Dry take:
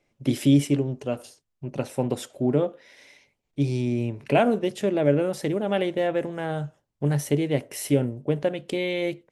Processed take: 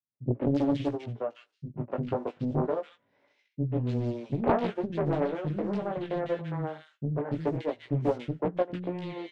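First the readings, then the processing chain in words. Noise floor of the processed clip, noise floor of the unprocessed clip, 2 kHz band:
-76 dBFS, -78 dBFS, -10.0 dB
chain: spectral whitening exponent 0.6; gate with hold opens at -50 dBFS; HPF 97 Hz 24 dB/oct; dynamic EQ 2500 Hz, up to -6 dB, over -43 dBFS, Q 1.7; transient shaper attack +5 dB, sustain -9 dB; chorus 0.25 Hz, delay 16.5 ms, depth 3.1 ms; tape spacing loss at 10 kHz 40 dB; three bands offset in time lows, mids, highs 0.14/0.29 s, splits 270/1900 Hz; Doppler distortion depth 0.99 ms

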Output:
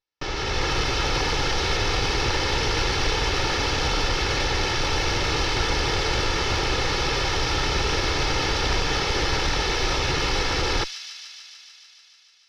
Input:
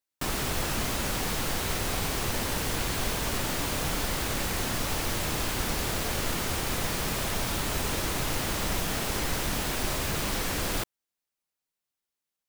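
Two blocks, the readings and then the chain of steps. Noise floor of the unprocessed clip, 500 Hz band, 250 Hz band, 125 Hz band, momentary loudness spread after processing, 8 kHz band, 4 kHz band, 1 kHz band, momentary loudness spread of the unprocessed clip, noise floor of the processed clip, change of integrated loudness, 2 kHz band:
under -85 dBFS, +7.0 dB, +3.0 dB, +5.5 dB, 2 LU, 0.0 dB, +9.0 dB, +7.5 dB, 0 LU, -53 dBFS, +6.0 dB, +8.0 dB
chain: minimum comb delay 2.3 ms; elliptic low-pass 5600 Hz, stop band 50 dB; AGC gain up to 6.5 dB; in parallel at -3 dB: soft clip -27 dBFS, distortion -11 dB; on the sum: thin delay 0.147 s, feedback 77%, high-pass 3700 Hz, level -6 dB

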